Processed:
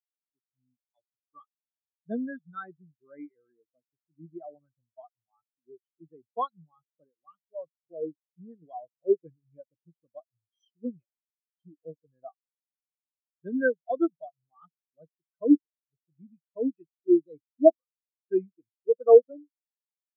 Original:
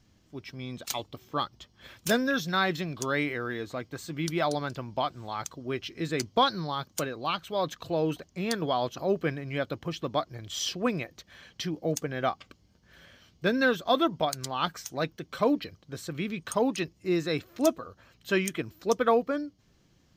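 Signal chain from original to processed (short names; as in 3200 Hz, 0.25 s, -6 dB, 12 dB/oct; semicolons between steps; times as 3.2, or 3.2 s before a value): spectral expander 4:1; gain +6 dB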